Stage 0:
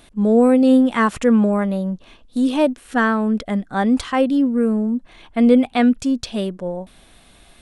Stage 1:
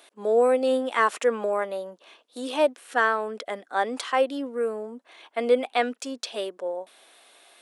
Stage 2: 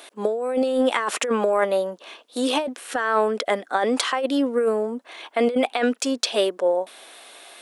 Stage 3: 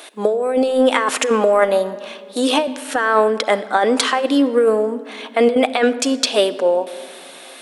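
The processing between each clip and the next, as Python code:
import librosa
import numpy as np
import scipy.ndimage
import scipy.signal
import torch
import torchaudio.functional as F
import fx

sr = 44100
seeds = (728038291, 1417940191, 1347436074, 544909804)

y1 = scipy.signal.sosfilt(scipy.signal.butter(4, 400.0, 'highpass', fs=sr, output='sos'), x)
y1 = y1 * librosa.db_to_amplitude(-2.5)
y2 = fx.over_compress(y1, sr, threshold_db=-27.0, ratio=-1.0)
y2 = y2 * librosa.db_to_amplitude(6.5)
y3 = fx.room_shoebox(y2, sr, seeds[0], volume_m3=3900.0, walls='mixed', distance_m=0.53)
y3 = y3 * librosa.db_to_amplitude(5.5)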